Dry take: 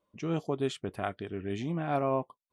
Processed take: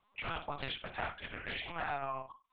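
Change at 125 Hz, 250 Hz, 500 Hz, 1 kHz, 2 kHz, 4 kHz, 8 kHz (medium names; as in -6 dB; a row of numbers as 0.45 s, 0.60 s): -13.5 dB, -17.5 dB, -12.5 dB, -3.5 dB, +4.0 dB, +3.0 dB, under -30 dB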